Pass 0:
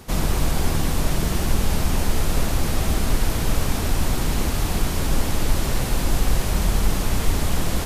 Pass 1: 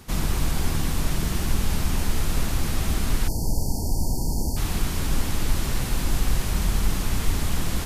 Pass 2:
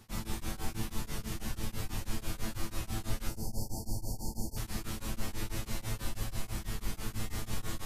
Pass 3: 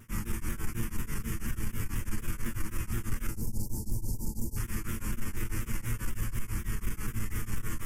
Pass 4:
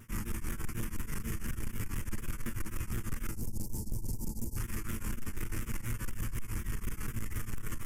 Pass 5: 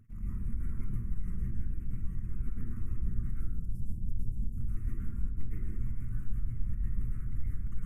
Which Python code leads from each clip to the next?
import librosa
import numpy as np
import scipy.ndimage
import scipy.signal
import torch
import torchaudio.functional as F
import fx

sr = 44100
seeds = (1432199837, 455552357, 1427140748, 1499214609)

y1 = fx.spec_erase(x, sr, start_s=3.28, length_s=1.29, low_hz=990.0, high_hz=4300.0)
y1 = fx.peak_eq(y1, sr, hz=570.0, db=-5.5, octaves=1.2)
y1 = y1 * 10.0 ** (-2.5 / 20.0)
y2 = fx.rider(y1, sr, range_db=10, speed_s=0.5)
y2 = fx.comb_fb(y2, sr, f0_hz=110.0, decay_s=0.41, harmonics='all', damping=0.0, mix_pct=90)
y2 = y2 * np.abs(np.cos(np.pi * 6.1 * np.arange(len(y2)) / sr))
y2 = y2 * 10.0 ** (2.0 / 20.0)
y3 = 10.0 ** (-27.0 / 20.0) * np.tanh(y2 / 10.0 ** (-27.0 / 20.0))
y3 = fx.fixed_phaser(y3, sr, hz=1700.0, stages=4)
y3 = fx.vibrato_shape(y3, sr, shape='saw_down', rate_hz=4.1, depth_cents=100.0)
y3 = y3 * 10.0 ** (6.0 / 20.0)
y4 = 10.0 ** (-28.0 / 20.0) * np.tanh(y3 / 10.0 ** (-28.0 / 20.0))
y5 = fx.envelope_sharpen(y4, sr, power=2.0)
y5 = fx.comb_fb(y5, sr, f0_hz=440.0, decay_s=0.56, harmonics='all', damping=0.0, mix_pct=50)
y5 = fx.rev_plate(y5, sr, seeds[0], rt60_s=0.84, hf_ratio=0.45, predelay_ms=95, drr_db=-8.5)